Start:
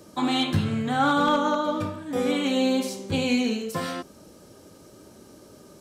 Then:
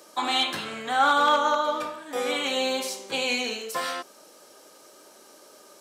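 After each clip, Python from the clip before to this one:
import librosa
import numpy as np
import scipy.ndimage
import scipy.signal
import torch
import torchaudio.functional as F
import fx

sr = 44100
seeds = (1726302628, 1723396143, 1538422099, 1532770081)

y = scipy.signal.sosfilt(scipy.signal.butter(2, 630.0, 'highpass', fs=sr, output='sos'), x)
y = F.gain(torch.from_numpy(y), 3.5).numpy()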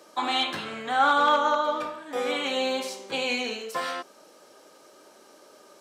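y = fx.high_shelf(x, sr, hz=5800.0, db=-9.5)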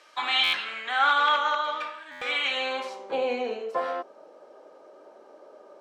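y = fx.filter_sweep_bandpass(x, sr, from_hz=2300.0, to_hz=590.0, start_s=2.47, end_s=3.19, q=1.3)
y = fx.buffer_glitch(y, sr, at_s=(0.43, 2.11), block=512, repeats=8)
y = F.gain(torch.from_numpy(y), 6.0).numpy()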